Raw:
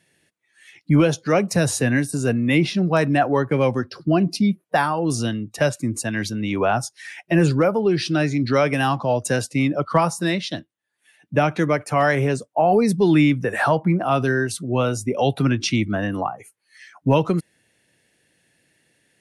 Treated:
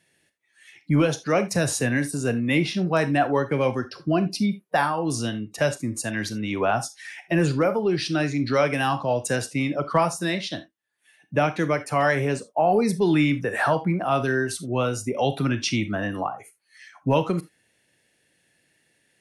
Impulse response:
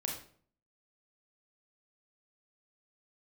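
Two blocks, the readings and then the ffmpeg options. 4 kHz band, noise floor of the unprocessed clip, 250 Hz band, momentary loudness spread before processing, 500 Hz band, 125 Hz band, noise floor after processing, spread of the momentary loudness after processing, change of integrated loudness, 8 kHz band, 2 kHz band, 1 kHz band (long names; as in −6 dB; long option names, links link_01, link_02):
−2.0 dB, −70 dBFS, −4.0 dB, 7 LU, −3.0 dB, −4.5 dB, −68 dBFS, 7 LU, −3.5 dB, −2.0 dB, −2.0 dB, −2.5 dB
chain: -filter_complex "[0:a]asplit=2[link_01][link_02];[link_02]equalizer=frequency=130:width=0.66:gain=-14.5[link_03];[1:a]atrim=start_sample=2205,atrim=end_sample=3969[link_04];[link_03][link_04]afir=irnorm=-1:irlink=0,volume=-5.5dB[link_05];[link_01][link_05]amix=inputs=2:normalize=0,volume=-5.5dB"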